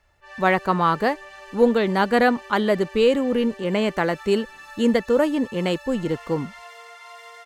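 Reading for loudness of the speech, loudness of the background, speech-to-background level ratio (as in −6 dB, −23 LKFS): −21.5 LKFS, −41.5 LKFS, 20.0 dB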